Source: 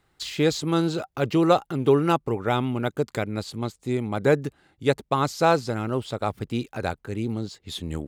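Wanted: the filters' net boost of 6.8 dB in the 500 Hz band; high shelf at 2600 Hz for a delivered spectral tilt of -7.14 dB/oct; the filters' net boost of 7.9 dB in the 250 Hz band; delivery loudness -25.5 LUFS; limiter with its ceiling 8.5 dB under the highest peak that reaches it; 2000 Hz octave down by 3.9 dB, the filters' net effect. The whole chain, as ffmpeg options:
-af "equalizer=f=250:t=o:g=8.5,equalizer=f=500:t=o:g=6,equalizer=f=2k:t=o:g=-3,highshelf=f=2.6k:g=-7.5,volume=-3.5dB,alimiter=limit=-13dB:level=0:latency=1"

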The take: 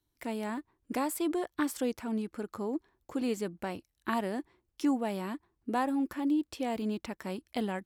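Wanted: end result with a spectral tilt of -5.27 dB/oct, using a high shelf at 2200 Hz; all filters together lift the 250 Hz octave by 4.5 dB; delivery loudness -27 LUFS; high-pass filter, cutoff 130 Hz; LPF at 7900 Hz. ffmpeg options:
-af "highpass=130,lowpass=7.9k,equalizer=f=250:t=o:g=5.5,highshelf=f=2.2k:g=5.5,volume=3.5dB"

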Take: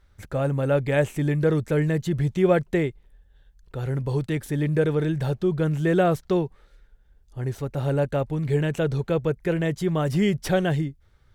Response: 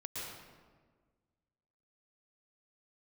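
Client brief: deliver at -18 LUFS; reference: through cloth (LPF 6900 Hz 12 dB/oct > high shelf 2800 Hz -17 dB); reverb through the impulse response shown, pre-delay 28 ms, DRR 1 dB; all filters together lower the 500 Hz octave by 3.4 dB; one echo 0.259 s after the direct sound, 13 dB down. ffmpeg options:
-filter_complex "[0:a]equalizer=f=500:t=o:g=-3.5,aecho=1:1:259:0.224,asplit=2[a][b];[1:a]atrim=start_sample=2205,adelay=28[c];[b][c]afir=irnorm=-1:irlink=0,volume=-1.5dB[d];[a][d]amix=inputs=2:normalize=0,lowpass=6.9k,highshelf=f=2.8k:g=-17,volume=4.5dB"

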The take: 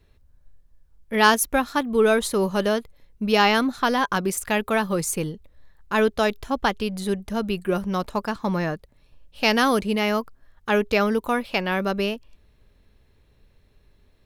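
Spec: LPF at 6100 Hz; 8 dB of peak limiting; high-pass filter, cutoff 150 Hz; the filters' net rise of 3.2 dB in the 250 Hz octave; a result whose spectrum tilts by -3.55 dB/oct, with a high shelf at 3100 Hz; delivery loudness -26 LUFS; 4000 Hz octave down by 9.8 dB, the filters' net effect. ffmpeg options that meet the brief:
-af "highpass=150,lowpass=6.1k,equalizer=f=250:t=o:g=5,highshelf=f=3.1k:g=-8.5,equalizer=f=4k:t=o:g=-7.5,volume=-2dB,alimiter=limit=-15dB:level=0:latency=1"

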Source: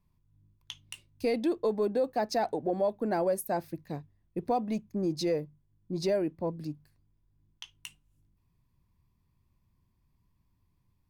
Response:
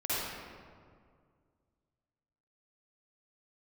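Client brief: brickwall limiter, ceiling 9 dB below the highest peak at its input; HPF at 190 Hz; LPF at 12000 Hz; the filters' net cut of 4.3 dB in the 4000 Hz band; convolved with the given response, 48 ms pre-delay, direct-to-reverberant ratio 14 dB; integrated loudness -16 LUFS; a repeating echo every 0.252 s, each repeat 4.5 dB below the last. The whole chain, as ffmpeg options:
-filter_complex "[0:a]highpass=190,lowpass=12k,equalizer=f=4k:t=o:g=-5.5,alimiter=level_in=3.5dB:limit=-24dB:level=0:latency=1,volume=-3.5dB,aecho=1:1:252|504|756|1008|1260|1512|1764|2016|2268:0.596|0.357|0.214|0.129|0.0772|0.0463|0.0278|0.0167|0.01,asplit=2[a][b];[1:a]atrim=start_sample=2205,adelay=48[c];[b][c]afir=irnorm=-1:irlink=0,volume=-22dB[d];[a][d]amix=inputs=2:normalize=0,volume=19.5dB"

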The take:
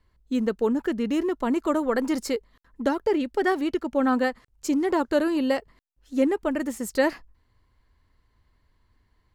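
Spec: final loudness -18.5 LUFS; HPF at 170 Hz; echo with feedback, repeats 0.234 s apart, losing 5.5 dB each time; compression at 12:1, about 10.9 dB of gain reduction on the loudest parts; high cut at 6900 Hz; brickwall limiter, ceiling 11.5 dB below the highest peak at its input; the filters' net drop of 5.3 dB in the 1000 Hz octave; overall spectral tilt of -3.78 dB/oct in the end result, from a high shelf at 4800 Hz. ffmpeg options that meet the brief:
-af "highpass=170,lowpass=6.9k,equalizer=f=1k:t=o:g=-7.5,highshelf=f=4.8k:g=8,acompressor=threshold=-30dB:ratio=12,alimiter=level_in=8.5dB:limit=-24dB:level=0:latency=1,volume=-8.5dB,aecho=1:1:234|468|702|936|1170|1404|1638:0.531|0.281|0.149|0.079|0.0419|0.0222|0.0118,volume=21dB"

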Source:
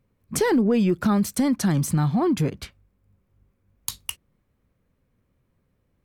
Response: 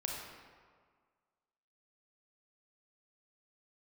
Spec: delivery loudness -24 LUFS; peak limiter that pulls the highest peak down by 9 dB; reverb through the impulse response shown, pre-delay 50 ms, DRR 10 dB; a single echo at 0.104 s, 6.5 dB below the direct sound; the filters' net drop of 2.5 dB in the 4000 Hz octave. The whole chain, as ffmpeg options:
-filter_complex "[0:a]equalizer=f=4k:t=o:g=-3.5,alimiter=limit=-18.5dB:level=0:latency=1,aecho=1:1:104:0.473,asplit=2[a][b];[1:a]atrim=start_sample=2205,adelay=50[c];[b][c]afir=irnorm=-1:irlink=0,volume=-12dB[d];[a][d]amix=inputs=2:normalize=0,volume=1dB"

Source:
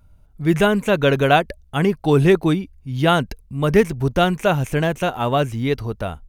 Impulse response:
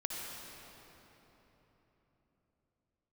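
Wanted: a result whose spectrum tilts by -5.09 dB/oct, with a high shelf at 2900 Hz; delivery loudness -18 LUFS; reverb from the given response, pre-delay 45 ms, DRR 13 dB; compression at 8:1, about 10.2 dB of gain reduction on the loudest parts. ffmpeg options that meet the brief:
-filter_complex "[0:a]highshelf=f=2.9k:g=6.5,acompressor=threshold=-20dB:ratio=8,asplit=2[a][b];[1:a]atrim=start_sample=2205,adelay=45[c];[b][c]afir=irnorm=-1:irlink=0,volume=-15.5dB[d];[a][d]amix=inputs=2:normalize=0,volume=7.5dB"

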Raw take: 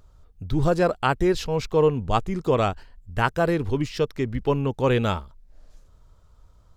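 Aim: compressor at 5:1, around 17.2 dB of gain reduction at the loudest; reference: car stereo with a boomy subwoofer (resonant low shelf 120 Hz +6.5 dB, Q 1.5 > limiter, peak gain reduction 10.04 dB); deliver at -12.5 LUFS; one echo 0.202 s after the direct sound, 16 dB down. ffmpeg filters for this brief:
-af "acompressor=threshold=-36dB:ratio=5,lowshelf=f=120:t=q:w=1.5:g=6.5,aecho=1:1:202:0.158,volume=29.5dB,alimiter=limit=-1.5dB:level=0:latency=1"

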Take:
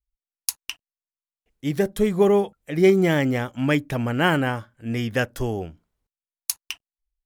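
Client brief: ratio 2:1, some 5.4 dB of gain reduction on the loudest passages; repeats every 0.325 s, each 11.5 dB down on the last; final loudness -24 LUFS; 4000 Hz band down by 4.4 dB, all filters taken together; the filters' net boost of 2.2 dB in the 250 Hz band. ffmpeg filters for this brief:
-af "equalizer=f=250:t=o:g=3,equalizer=f=4k:t=o:g=-7,acompressor=threshold=-20dB:ratio=2,aecho=1:1:325|650|975:0.266|0.0718|0.0194,volume=1dB"

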